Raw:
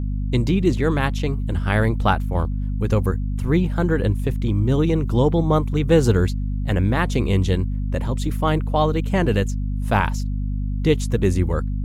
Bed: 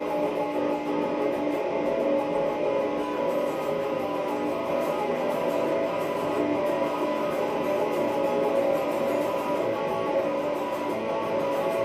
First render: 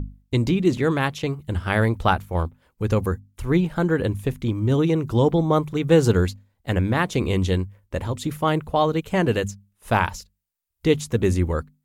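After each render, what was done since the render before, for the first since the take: hum notches 50/100/150/200/250 Hz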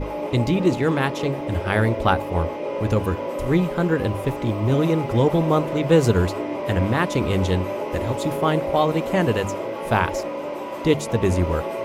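add bed -2 dB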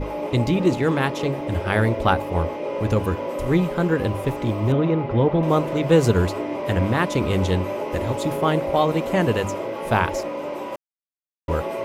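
4.72–5.43 s: distance through air 280 m; 10.76–11.48 s: mute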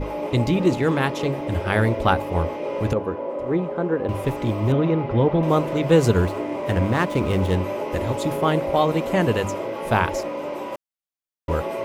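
2.93–4.09 s: band-pass filter 530 Hz, Q 0.71; 6.20–7.58 s: median filter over 9 samples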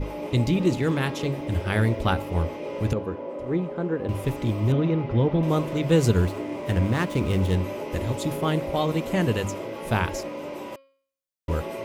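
peaking EQ 840 Hz -7 dB 2.6 oct; de-hum 271.8 Hz, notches 18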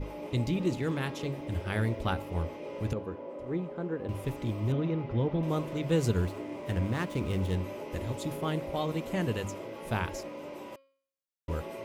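trim -7.5 dB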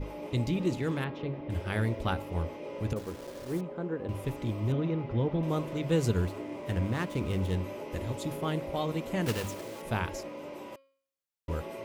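1.04–1.50 s: distance through air 320 m; 2.96–3.61 s: send-on-delta sampling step -41.5 dBFS; 9.26–9.84 s: block-companded coder 3-bit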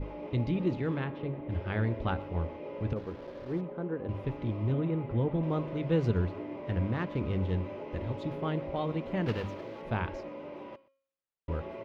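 distance through air 280 m; delay 123 ms -23 dB

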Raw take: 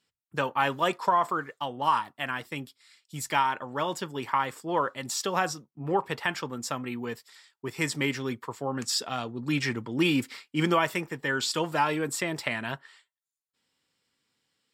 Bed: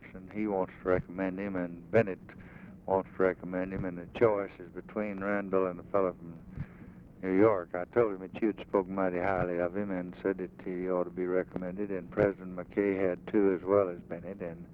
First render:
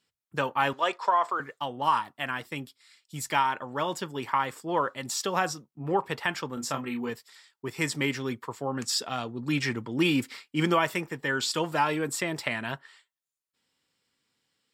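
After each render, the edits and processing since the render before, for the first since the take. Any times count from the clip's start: 0.73–1.40 s: three-band isolator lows -21 dB, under 360 Hz, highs -18 dB, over 7.9 kHz; 6.54–7.10 s: doubling 29 ms -6 dB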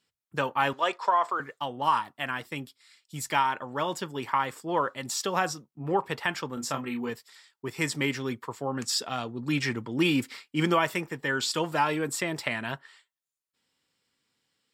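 no audible change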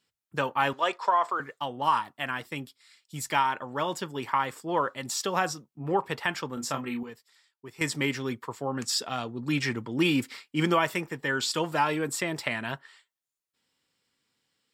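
7.03–7.81 s: gain -9.5 dB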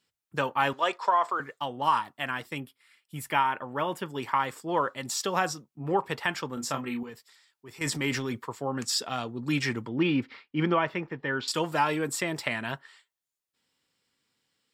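2.58–4.06 s: high-order bell 5.4 kHz -10.5 dB 1.3 oct; 7.09–8.42 s: transient shaper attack -5 dB, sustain +6 dB; 9.89–11.48 s: distance through air 290 m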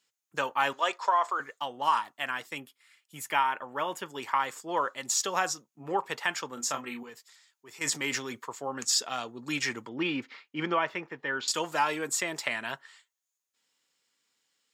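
high-pass 560 Hz 6 dB/octave; peaking EQ 6.6 kHz +10.5 dB 0.23 oct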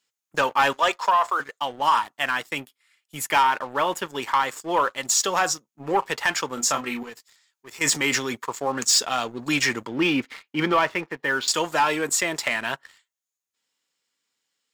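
gain riding 2 s; waveshaping leveller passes 2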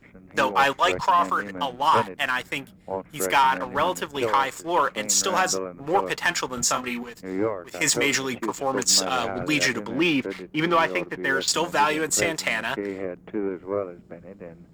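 add bed -1.5 dB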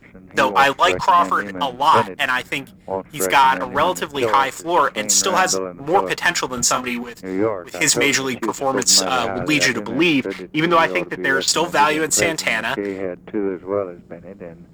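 trim +5.5 dB

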